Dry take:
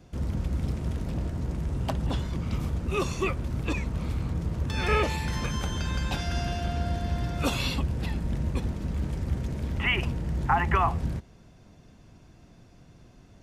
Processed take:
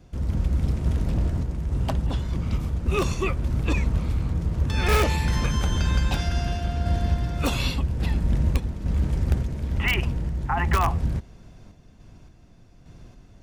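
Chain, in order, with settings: random-step tremolo, depth 55%; in parallel at -5 dB: wrapped overs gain 17.5 dB; on the sum: low shelf 62 Hz +9.5 dB

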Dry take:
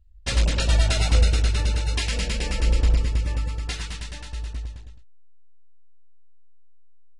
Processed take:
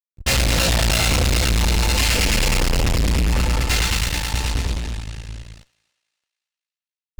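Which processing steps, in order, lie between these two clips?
two-slope reverb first 0.3 s, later 3.7 s, from -20 dB, DRR -5 dB; fuzz box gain 32 dB, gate -37 dBFS; on a send: thinning echo 0.282 s, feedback 44%, high-pass 610 Hz, level -24 dB; on the sum: gain -2.5 dB

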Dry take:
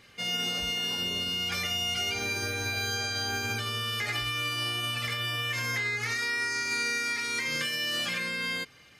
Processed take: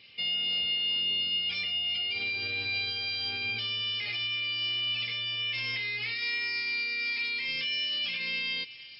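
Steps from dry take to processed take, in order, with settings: HPF 76 Hz; resonant high shelf 2000 Hz +8.5 dB, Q 3; limiter -17 dBFS, peak gain reduction 7 dB; brick-wall FIR low-pass 5400 Hz; thin delay 0.342 s, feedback 71%, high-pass 1900 Hz, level -18 dB; gain -7.5 dB

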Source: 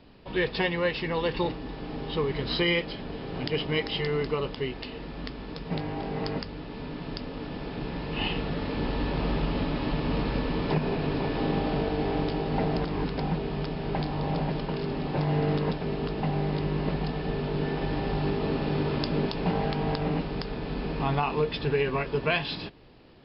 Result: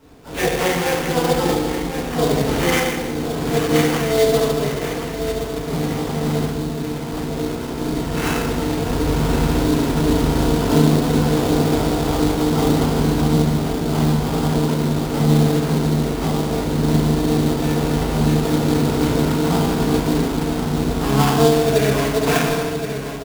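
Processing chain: feedback echo 1.072 s, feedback 43%, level -9.5 dB; FDN reverb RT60 1.4 s, low-frequency decay 1.3×, high-frequency decay 0.65×, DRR -8.5 dB; sample-rate reducer 4100 Hz, jitter 20%; harmoniser +7 st -6 dB; gain -2.5 dB

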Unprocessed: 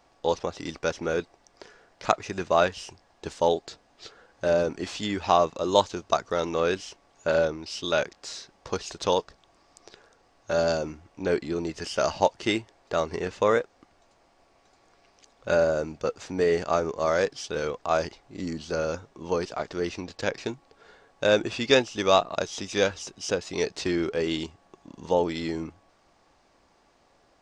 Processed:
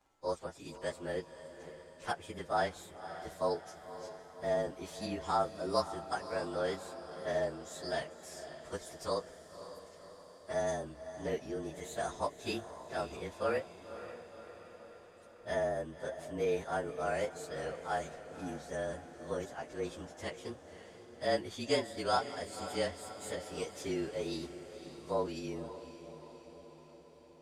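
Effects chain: inharmonic rescaling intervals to 111%; diffused feedback echo 0.544 s, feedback 61%, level -12 dB; gain -8.5 dB

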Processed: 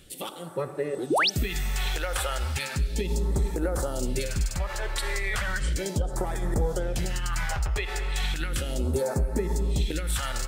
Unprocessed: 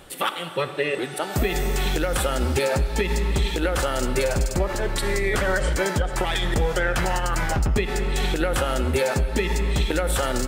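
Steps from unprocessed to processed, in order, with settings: phaser stages 2, 0.35 Hz, lowest notch 210–3000 Hz; painted sound rise, 1.1–1.3, 250–6400 Hz -18 dBFS; gain -4 dB

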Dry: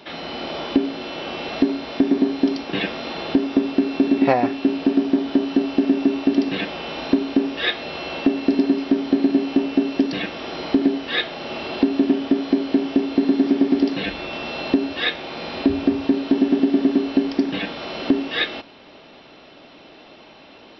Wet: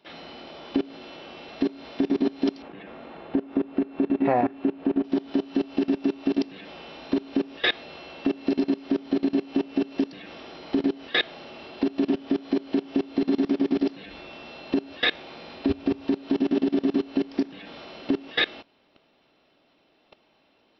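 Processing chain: 2.62–5.04 LPF 1900 Hz 12 dB/oct; level quantiser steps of 22 dB; gain +1.5 dB

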